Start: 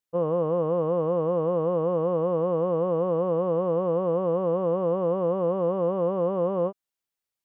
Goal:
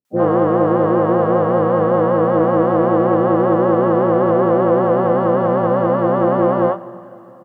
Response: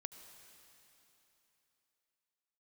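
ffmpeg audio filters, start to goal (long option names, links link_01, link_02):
-filter_complex "[0:a]highpass=frequency=190:poles=1,equalizer=frequency=1300:width_type=o:width=0.25:gain=9,asplit=4[link_01][link_02][link_03][link_04];[link_02]asetrate=29433,aresample=44100,atempo=1.49831,volume=-5dB[link_05];[link_03]asetrate=52444,aresample=44100,atempo=0.840896,volume=-13dB[link_06];[link_04]asetrate=66075,aresample=44100,atempo=0.66742,volume=-13dB[link_07];[link_01][link_05][link_06][link_07]amix=inputs=4:normalize=0,acrossover=split=470[link_08][link_09];[link_09]adelay=50[link_10];[link_08][link_10]amix=inputs=2:normalize=0,asplit=2[link_11][link_12];[1:a]atrim=start_sample=2205[link_13];[link_12][link_13]afir=irnorm=-1:irlink=0,volume=0dB[link_14];[link_11][link_14]amix=inputs=2:normalize=0,acontrast=52,volume=1.5dB"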